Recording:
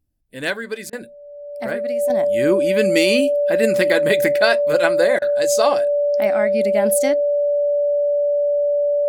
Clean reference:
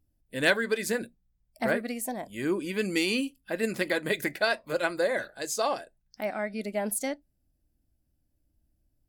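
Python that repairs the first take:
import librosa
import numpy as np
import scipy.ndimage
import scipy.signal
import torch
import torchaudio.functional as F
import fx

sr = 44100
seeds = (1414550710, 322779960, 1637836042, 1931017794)

y = fx.notch(x, sr, hz=580.0, q=30.0)
y = fx.fix_interpolate(y, sr, at_s=(0.9, 5.19), length_ms=27.0)
y = fx.gain(y, sr, db=fx.steps((0.0, 0.0), (2.1, -9.0)))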